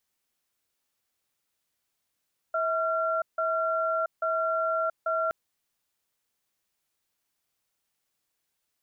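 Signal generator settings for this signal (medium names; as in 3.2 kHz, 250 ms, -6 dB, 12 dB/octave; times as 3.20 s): cadence 648 Hz, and 1.37 kHz, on 0.68 s, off 0.16 s, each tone -27 dBFS 2.77 s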